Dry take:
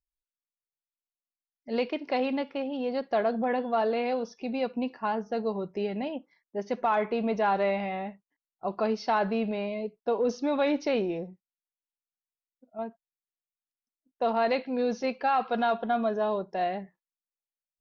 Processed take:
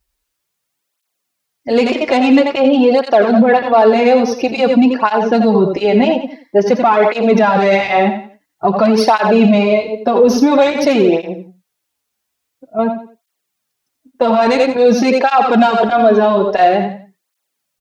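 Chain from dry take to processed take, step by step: tracing distortion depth 0.036 ms; 7.57–8.08 s: treble shelf 4.5 kHz +7 dB; feedback delay 87 ms, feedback 29%, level -9 dB; loudness maximiser +24.5 dB; cancelling through-zero flanger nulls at 0.49 Hz, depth 7.2 ms

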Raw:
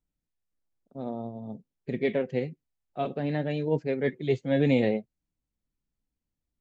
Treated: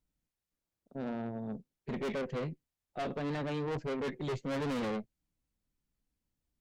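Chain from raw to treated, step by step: valve stage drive 35 dB, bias 0.4; trim +2.5 dB

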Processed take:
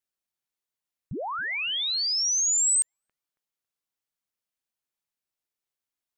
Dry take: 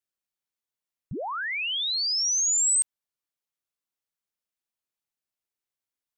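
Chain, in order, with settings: bucket-brigade echo 275 ms, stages 4096, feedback 32%, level -21 dB

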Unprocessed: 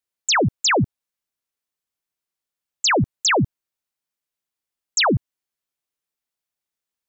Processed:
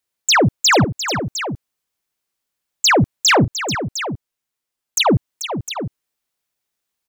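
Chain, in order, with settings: saturation -16 dBFS, distortion -20 dB; 3.44–5.06 s: touch-sensitive flanger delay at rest 8.3 ms, full sweep at -27 dBFS; multi-tap echo 438/707 ms -10/-11 dB; trim +7 dB

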